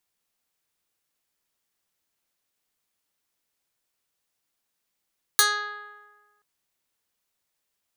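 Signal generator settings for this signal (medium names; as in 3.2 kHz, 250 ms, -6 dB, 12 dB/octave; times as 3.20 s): plucked string G#4, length 1.03 s, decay 1.42 s, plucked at 0.16, medium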